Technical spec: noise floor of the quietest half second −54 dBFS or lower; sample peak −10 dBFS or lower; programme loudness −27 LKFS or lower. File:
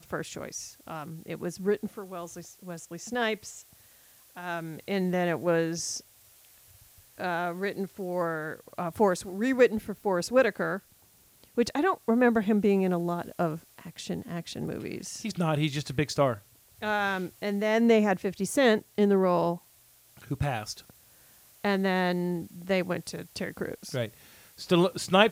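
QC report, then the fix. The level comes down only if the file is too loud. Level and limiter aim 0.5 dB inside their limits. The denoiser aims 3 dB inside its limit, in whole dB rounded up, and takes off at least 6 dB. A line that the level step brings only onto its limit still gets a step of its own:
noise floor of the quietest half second −60 dBFS: in spec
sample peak −6.0 dBFS: out of spec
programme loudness −28.5 LKFS: in spec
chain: brickwall limiter −10.5 dBFS

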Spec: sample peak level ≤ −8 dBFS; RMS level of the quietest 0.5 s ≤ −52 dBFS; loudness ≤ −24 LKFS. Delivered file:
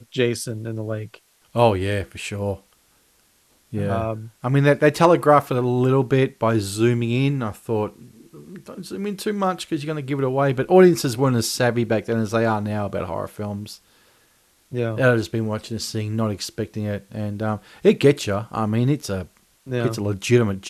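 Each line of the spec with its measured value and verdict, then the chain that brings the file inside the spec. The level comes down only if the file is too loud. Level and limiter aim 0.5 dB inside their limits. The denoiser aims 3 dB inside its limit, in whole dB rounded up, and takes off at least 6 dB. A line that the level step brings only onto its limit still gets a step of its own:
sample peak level −3.0 dBFS: out of spec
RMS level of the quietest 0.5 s −60 dBFS: in spec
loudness −21.5 LKFS: out of spec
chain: level −3 dB
brickwall limiter −8.5 dBFS

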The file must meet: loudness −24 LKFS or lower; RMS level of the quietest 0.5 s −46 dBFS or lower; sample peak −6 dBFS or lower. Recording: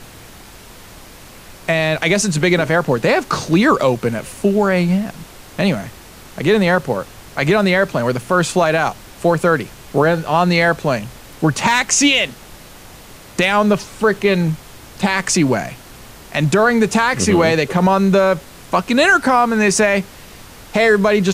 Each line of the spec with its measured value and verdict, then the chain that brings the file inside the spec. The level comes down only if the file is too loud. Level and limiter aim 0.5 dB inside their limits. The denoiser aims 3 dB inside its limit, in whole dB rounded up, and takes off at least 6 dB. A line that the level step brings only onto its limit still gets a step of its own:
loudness −16.0 LKFS: out of spec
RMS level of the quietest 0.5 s −39 dBFS: out of spec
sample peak −3.0 dBFS: out of spec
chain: level −8.5 dB

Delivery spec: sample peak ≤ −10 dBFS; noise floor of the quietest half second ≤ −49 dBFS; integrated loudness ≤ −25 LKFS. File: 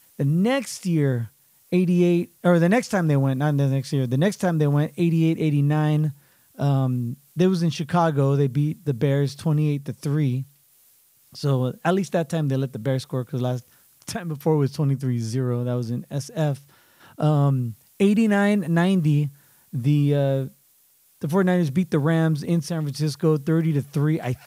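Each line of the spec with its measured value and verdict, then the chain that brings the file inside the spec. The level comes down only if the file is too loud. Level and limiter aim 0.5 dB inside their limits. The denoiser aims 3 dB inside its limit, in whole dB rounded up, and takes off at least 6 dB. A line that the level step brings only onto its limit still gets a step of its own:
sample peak −7.5 dBFS: out of spec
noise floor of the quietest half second −59 dBFS: in spec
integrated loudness −22.5 LKFS: out of spec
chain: level −3 dB

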